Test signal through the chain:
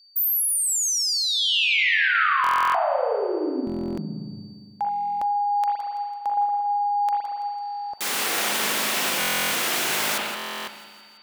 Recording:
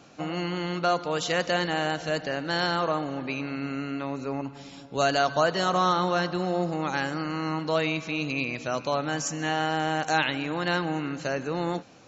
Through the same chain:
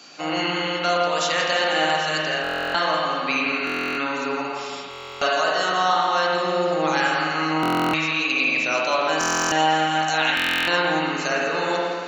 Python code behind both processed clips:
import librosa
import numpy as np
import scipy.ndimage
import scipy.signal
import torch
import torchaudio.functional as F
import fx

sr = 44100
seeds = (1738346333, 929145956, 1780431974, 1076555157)

p1 = x + 10.0 ** (-58.0 / 20.0) * np.sin(2.0 * np.pi * 4600.0 * np.arange(len(x)) / sr)
p2 = fx.rider(p1, sr, range_db=5, speed_s=0.5)
p3 = fx.dynamic_eq(p2, sr, hz=850.0, q=0.78, threshold_db=-40.0, ratio=4.0, max_db=3)
p4 = scipy.signal.sosfilt(scipy.signal.butter(4, 190.0, 'highpass', fs=sr, output='sos'), p3)
p5 = fx.tilt_shelf(p4, sr, db=-7.5, hz=1200.0)
p6 = p5 + fx.echo_feedback(p5, sr, ms=166, feedback_pct=58, wet_db=-12, dry=0)
p7 = fx.rev_spring(p6, sr, rt60_s=1.9, pass_ms=(38, 57), chirp_ms=65, drr_db=-3.5)
y = fx.buffer_glitch(p7, sr, at_s=(2.42, 3.65, 4.89, 7.61, 9.19, 10.35), block=1024, repeats=13)